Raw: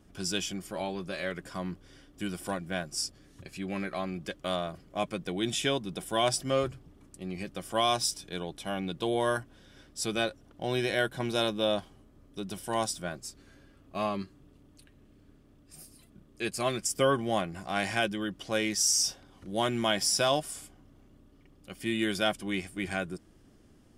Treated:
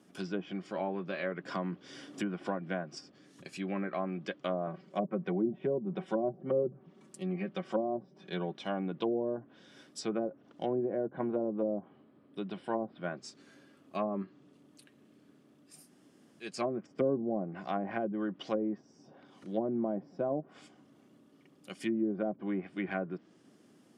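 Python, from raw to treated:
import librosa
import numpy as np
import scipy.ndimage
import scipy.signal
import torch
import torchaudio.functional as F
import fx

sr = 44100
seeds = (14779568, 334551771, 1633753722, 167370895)

y = fx.band_squash(x, sr, depth_pct=70, at=(1.48, 2.97))
y = fx.comb(y, sr, ms=5.3, depth=0.65, at=(4.66, 8.58))
y = fx.moving_average(y, sr, points=7, at=(10.66, 13.17))
y = fx.edit(y, sr, fx.room_tone_fill(start_s=15.8, length_s=0.7, crossfade_s=0.24), tone=tone)
y = fx.env_lowpass_down(y, sr, base_hz=540.0, full_db=-25.5)
y = scipy.signal.sosfilt(scipy.signal.butter(4, 160.0, 'highpass', fs=sr, output='sos'), y)
y = fx.env_lowpass_down(y, sr, base_hz=600.0, full_db=-26.5)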